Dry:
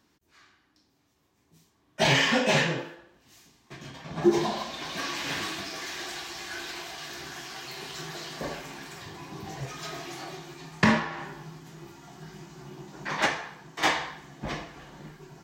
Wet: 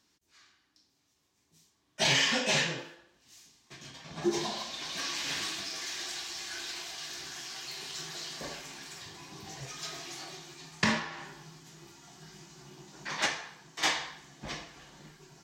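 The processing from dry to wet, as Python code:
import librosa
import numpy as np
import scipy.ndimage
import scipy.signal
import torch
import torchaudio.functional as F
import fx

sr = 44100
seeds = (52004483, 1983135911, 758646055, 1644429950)

y = fx.peak_eq(x, sr, hz=6100.0, db=11.0, octaves=2.5)
y = y * 10.0 ** (-8.5 / 20.0)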